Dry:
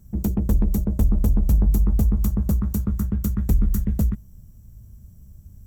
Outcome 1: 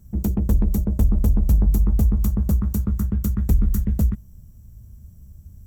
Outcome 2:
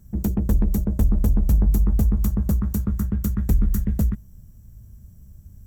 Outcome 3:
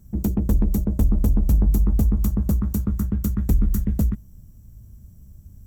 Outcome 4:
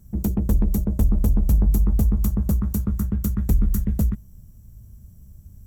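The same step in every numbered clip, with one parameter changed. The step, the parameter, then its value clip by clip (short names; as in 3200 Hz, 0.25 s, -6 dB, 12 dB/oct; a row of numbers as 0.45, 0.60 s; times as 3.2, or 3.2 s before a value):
bell, frequency: 73, 1700, 290, 11000 Hz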